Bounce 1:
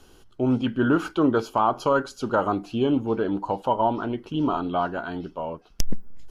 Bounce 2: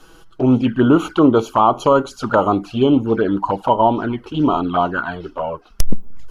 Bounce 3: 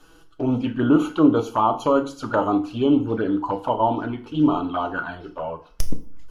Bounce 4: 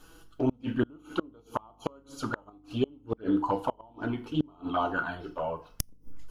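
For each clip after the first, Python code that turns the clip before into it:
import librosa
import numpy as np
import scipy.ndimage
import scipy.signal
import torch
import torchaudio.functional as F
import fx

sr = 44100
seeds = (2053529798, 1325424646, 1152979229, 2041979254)

y1 = fx.peak_eq(x, sr, hz=1300.0, db=7.0, octaves=0.9)
y1 = fx.env_flanger(y1, sr, rest_ms=6.8, full_db=-18.5)
y1 = y1 * librosa.db_to_amplitude(8.5)
y2 = fx.rev_fdn(y1, sr, rt60_s=0.43, lf_ratio=1.05, hf_ratio=0.95, size_ms=20.0, drr_db=6.0)
y2 = y2 * librosa.db_to_amplitude(-7.0)
y3 = fx.gate_flip(y2, sr, shuts_db=-12.0, range_db=-32)
y3 = fx.high_shelf(y3, sr, hz=9700.0, db=9.5)
y3 = fx.add_hum(y3, sr, base_hz=50, snr_db=33)
y3 = y3 * librosa.db_to_amplitude(-3.0)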